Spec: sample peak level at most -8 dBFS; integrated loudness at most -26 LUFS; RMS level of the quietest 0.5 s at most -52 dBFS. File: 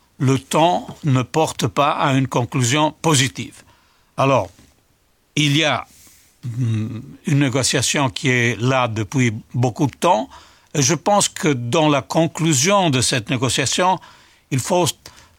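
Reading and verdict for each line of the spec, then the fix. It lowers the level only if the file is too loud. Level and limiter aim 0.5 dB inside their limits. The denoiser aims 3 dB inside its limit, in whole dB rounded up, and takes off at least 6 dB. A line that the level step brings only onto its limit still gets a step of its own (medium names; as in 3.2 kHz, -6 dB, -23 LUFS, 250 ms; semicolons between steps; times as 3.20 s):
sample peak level -4.0 dBFS: fail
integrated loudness -18.0 LUFS: fail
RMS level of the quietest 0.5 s -60 dBFS: pass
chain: trim -8.5 dB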